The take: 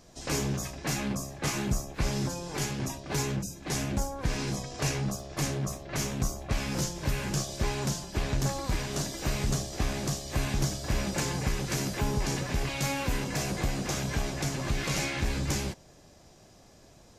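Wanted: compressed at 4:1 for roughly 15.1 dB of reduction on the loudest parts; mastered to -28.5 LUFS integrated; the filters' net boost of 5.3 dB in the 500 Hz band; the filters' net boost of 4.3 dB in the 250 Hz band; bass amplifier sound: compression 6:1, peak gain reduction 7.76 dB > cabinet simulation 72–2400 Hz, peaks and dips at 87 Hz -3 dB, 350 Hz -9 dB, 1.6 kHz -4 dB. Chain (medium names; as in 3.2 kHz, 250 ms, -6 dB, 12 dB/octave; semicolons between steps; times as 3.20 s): peaking EQ 250 Hz +6 dB; peaking EQ 500 Hz +7.5 dB; compression 4:1, threshold -41 dBFS; compression 6:1, threshold -42 dBFS; cabinet simulation 72–2400 Hz, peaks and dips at 87 Hz -3 dB, 350 Hz -9 dB, 1.6 kHz -4 dB; trim +20.5 dB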